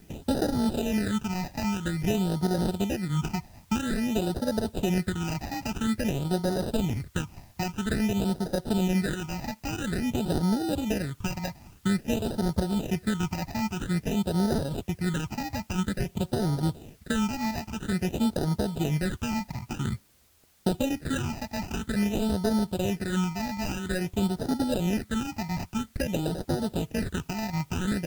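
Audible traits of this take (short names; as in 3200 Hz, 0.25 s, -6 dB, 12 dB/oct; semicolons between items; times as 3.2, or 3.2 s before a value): aliases and images of a low sample rate 1100 Hz, jitter 0%; phasing stages 8, 0.5 Hz, lowest notch 430–2500 Hz; a quantiser's noise floor 10-bit, dither triangular; AAC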